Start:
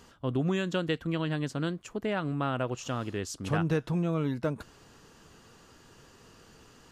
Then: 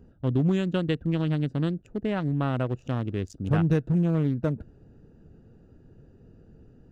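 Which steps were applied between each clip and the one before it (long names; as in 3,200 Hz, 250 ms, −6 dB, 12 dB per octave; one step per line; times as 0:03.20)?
adaptive Wiener filter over 41 samples
low-shelf EQ 290 Hz +9 dB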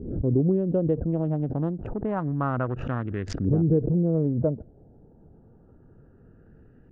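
auto-filter low-pass saw up 0.29 Hz 370–2,000 Hz
background raised ahead of every attack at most 60 dB per second
level −1.5 dB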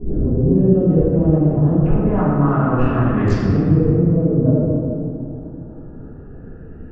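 brickwall limiter −24 dBFS, peak gain reduction 11.5 dB
convolution reverb RT60 2.7 s, pre-delay 3 ms, DRR −15.5 dB
level −2.5 dB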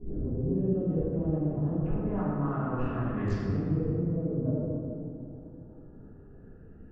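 tuned comb filter 100 Hz, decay 1.2 s, harmonics all, mix 60%
level −7 dB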